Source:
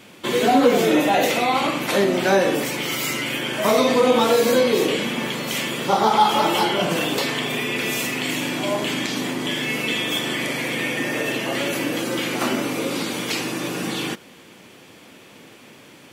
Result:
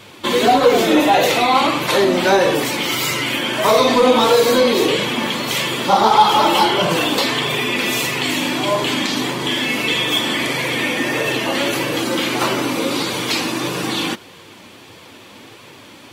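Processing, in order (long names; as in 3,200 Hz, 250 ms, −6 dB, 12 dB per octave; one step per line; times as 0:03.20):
graphic EQ with 15 bands 100 Hz +7 dB, 1,000 Hz +5 dB, 4,000 Hz +5 dB
in parallel at −8.5 dB: gain into a clipping stage and back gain 16.5 dB
on the sum: flanger 1.6 Hz, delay 1.7 ms, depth 2.2 ms, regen −43%
level +4.5 dB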